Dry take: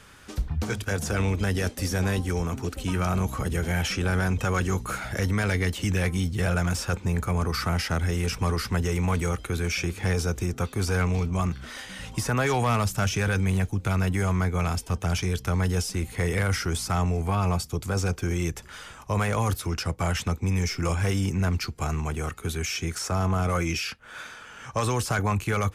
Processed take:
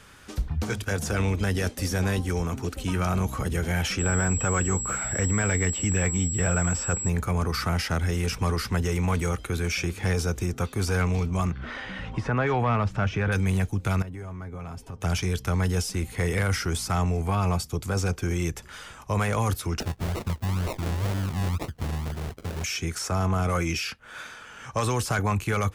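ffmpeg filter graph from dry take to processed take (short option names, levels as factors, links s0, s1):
-filter_complex "[0:a]asettb=1/sr,asplit=3[s0][s1][s2];[s0]atrim=end=3.994[s3];[s1]atrim=start=3.99:end=7.09,asetpts=PTS-STARTPTS,afade=t=in:d=0.004:c=qsin,afade=t=out:st=3.096:d=0.004:c=qsin,acrossover=split=5100[s4][s5];[s5]acompressor=threshold=0.00316:ratio=4:attack=1:release=60[s6];[s4][s6]amix=inputs=2:normalize=0,aeval=exprs='val(0)+0.0355*sin(2*PI*7700*n/s)':c=same,equalizer=f=4100:w=3:g=-7.5[s7];[s2]atrim=start=7.086[s8];[s3][s7]acrossfade=d=0.004:c1=hsin:c2=qsin[s9];[s9][s8]acrossfade=d=0.004:c1=qsin:c2=hsin,asettb=1/sr,asplit=3[s10][s11][s12];[s10]atrim=end=11.514[s13];[s11]atrim=start=11.51:end=13.32,asetpts=PTS-STARTPTS,afade=t=in:d=0.004:c=qsin,afade=t=out:st=1.806:d=0.004:c=qsin,lowpass=2300,acompressor=mode=upward:threshold=0.0447:ratio=2.5:attack=3.2:release=140:knee=2.83:detection=peak[s14];[s12]atrim=start=13.316[s15];[s13][s14]acrossfade=d=0.004:c1=hsin:c2=qsin[s16];[s16][s15]acrossfade=d=0.004:c1=qsin:c2=hsin,asettb=1/sr,asplit=3[s17][s18][s19];[s17]atrim=end=14.024[s20];[s18]atrim=start=14.02:end=15.01,asetpts=PTS-STARTPTS,afade=t=in:d=0.004:c=qsin,afade=t=out:st=0.986:d=0.004:c=qsin,highshelf=f=2100:g=-11.5,aecho=1:1:7.4:0.43,atrim=end_sample=43659,acompressor=threshold=0.0224:ratio=10:attack=3.2:release=140:knee=1:detection=peak[s21];[s19]atrim=start=15.006[s22];[s20][s21]acrossfade=d=0.004:c1=hsin:c2=qsin[s23];[s23][s22]acrossfade=d=0.004:c1=qsin:c2=hsin,asettb=1/sr,asplit=3[s24][s25][s26];[s24]atrim=end=19.804[s27];[s25]atrim=start=19.8:end=22.64,asetpts=PTS-STARTPTS,afade=t=in:d=0.004:c=qsin,afade=t=out:st=2.836:d=0.004:c=qsin,equalizer=f=440:t=o:w=2.5:g=-8,acrusher=samples=38:mix=1:aa=0.000001:lfo=1:lforange=22.8:lforate=2[s28];[s26]atrim=start=22.636[s29];[s27][s28]acrossfade=d=0.004:c1=hsin:c2=qsin[s30];[s30][s29]acrossfade=d=0.004:c1=qsin:c2=hsin"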